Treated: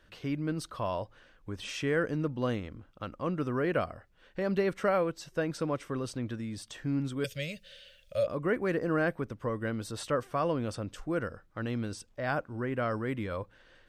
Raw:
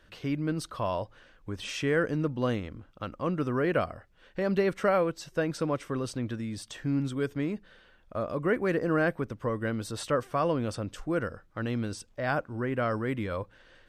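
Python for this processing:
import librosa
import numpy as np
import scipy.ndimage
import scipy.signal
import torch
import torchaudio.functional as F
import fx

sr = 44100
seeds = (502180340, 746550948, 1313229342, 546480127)

y = fx.curve_eq(x, sr, hz=(160.0, 350.0, 560.0, 820.0, 2800.0), db=(0, -23, 11, -20, 14), at=(7.24, 8.27))
y = F.gain(torch.from_numpy(y), -2.5).numpy()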